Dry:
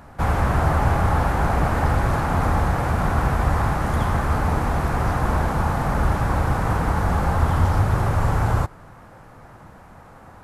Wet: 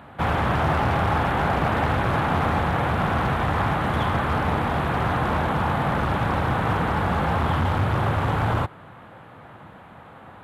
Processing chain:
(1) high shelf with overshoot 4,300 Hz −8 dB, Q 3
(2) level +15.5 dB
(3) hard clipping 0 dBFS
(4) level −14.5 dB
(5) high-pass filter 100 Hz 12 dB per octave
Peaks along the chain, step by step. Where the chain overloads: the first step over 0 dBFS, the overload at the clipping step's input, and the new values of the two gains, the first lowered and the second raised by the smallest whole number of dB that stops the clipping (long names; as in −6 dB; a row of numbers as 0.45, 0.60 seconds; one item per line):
−6.0, +9.5, 0.0, −14.5, −9.0 dBFS
step 2, 9.5 dB
step 2 +5.5 dB, step 4 −4.5 dB